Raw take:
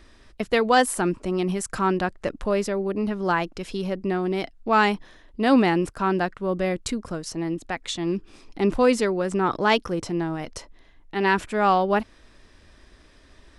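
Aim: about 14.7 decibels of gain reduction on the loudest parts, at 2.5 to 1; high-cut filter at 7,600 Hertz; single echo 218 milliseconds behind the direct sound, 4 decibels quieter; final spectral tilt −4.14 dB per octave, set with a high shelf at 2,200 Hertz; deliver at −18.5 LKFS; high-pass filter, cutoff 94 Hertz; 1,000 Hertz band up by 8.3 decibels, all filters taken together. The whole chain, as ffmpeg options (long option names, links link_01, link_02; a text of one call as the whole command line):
ffmpeg -i in.wav -af "highpass=94,lowpass=7600,equalizer=frequency=1000:width_type=o:gain=9,highshelf=frequency=2200:gain=8,acompressor=threshold=-30dB:ratio=2.5,aecho=1:1:218:0.631,volume=10.5dB" out.wav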